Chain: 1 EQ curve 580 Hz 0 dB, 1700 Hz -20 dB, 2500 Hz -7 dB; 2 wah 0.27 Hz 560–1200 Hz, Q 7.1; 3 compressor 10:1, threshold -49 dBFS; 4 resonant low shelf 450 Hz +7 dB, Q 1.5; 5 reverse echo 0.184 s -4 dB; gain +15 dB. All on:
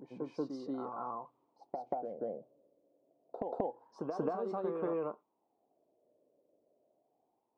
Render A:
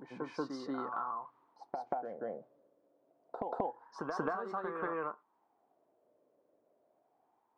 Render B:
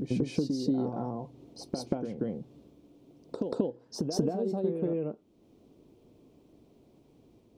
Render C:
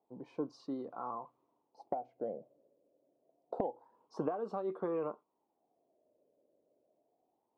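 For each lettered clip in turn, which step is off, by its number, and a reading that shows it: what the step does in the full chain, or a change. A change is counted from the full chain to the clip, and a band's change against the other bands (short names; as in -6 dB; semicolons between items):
1, 2 kHz band +15.5 dB; 2, 1 kHz band -14.0 dB; 5, momentary loudness spread change +2 LU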